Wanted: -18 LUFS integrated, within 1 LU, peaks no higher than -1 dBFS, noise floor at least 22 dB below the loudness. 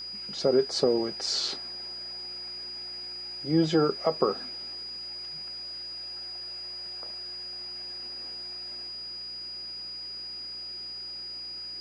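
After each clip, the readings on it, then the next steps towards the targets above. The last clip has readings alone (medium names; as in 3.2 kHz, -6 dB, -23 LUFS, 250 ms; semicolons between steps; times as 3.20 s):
hum 60 Hz; highest harmonic 360 Hz; hum level -56 dBFS; steady tone 4.9 kHz; tone level -36 dBFS; loudness -31.5 LUFS; peak level -11.5 dBFS; loudness target -18.0 LUFS
-> de-hum 60 Hz, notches 6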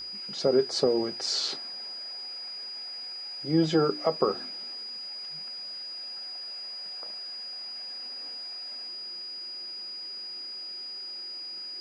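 hum not found; steady tone 4.9 kHz; tone level -36 dBFS
-> band-stop 4.9 kHz, Q 30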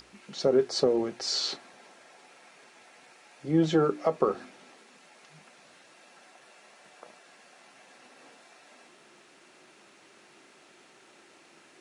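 steady tone not found; loudness -27.5 LUFS; peak level -11.5 dBFS; loudness target -18.0 LUFS
-> trim +9.5 dB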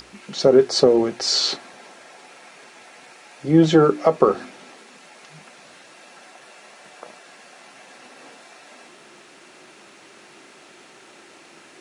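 loudness -18.0 LUFS; peak level -2.0 dBFS; noise floor -48 dBFS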